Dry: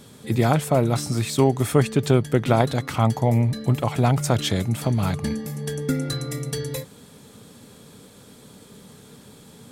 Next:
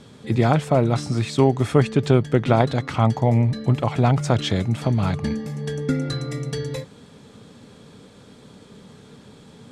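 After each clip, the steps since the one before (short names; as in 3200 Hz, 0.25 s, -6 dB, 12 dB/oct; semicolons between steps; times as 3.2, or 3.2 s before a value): air absorption 86 m; gain +1.5 dB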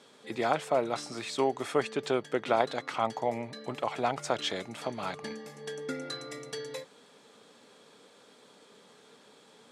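HPF 450 Hz 12 dB/oct; gain -5.5 dB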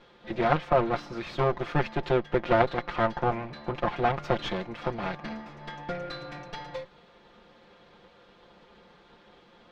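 minimum comb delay 5.7 ms; air absorption 260 m; gain +5.5 dB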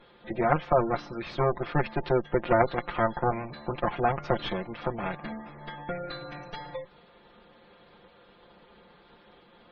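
spectral gate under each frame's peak -25 dB strong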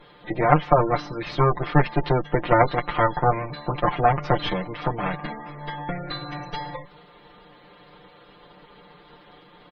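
comb 6.7 ms, depth 66%; gain +5 dB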